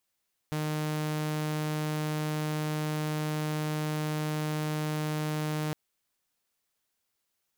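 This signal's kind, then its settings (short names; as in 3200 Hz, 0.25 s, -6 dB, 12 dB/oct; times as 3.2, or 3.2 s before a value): tone saw 153 Hz -26.5 dBFS 5.21 s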